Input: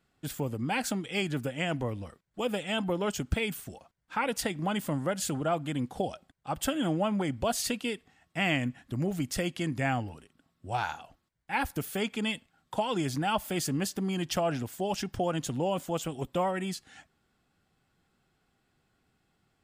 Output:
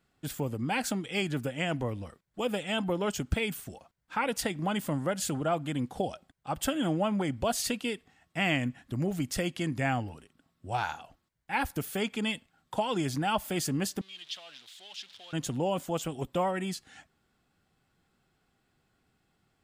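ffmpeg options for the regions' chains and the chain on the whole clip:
ffmpeg -i in.wav -filter_complex "[0:a]asettb=1/sr,asplit=3[link_01][link_02][link_03];[link_01]atrim=end=14.014[link_04];[link_02]atrim=start=14.01:end=15.33,asetpts=PTS-STARTPTS,afade=type=in:duration=0.004:curve=qsin,afade=type=out:start_time=1.316:duration=0.004:curve=qsin,aeval=exprs='val(0)+0.5*0.02*sgn(val(0))':channel_layout=same,bandpass=frequency=3600:width_type=q:width=3.9[link_05];[link_03]atrim=start=15.326[link_06];[link_04][link_05]acrossfade=duration=0.004:curve1=hsin:curve2=qsin[link_07];[link_07][link_06]acrossfade=duration=0.004:curve1=qsin:curve2=hsin" out.wav

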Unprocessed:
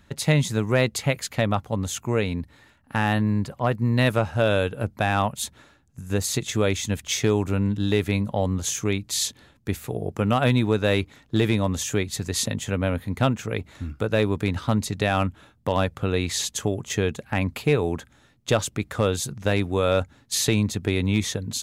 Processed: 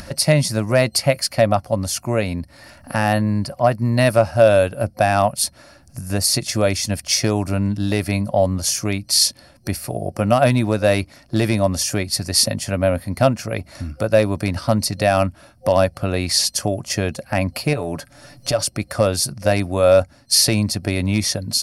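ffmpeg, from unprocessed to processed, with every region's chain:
ffmpeg -i in.wav -filter_complex "[0:a]asettb=1/sr,asplit=3[link_01][link_02][link_03];[link_01]atrim=end=17.734[link_04];[link_02]atrim=start=17.73:end=18.63,asetpts=PTS-STARTPTS,afade=type=in:duration=0.004:curve=qsin,afade=type=out:start_time=0.896:duration=0.004:curve=qsin,aecho=1:1:6.9:0.45,atrim=end_sample=39690,acompressor=threshold=-21dB:ratio=6:attack=3.2:release=140:knee=1:detection=peak[link_05];[link_03]atrim=start=18.626[link_06];[link_04][link_05]acrossfade=duration=0.004:curve1=hsin:curve2=qsin[link_07];[link_07][link_06]acrossfade=duration=0.004:curve1=qsin:curve2=hsin,superequalizer=7b=0.562:8b=2.51:13b=0.631:14b=3.55:16b=3.16,acompressor=mode=upward:threshold=-27dB:ratio=2.5,volume=3dB" out.wav

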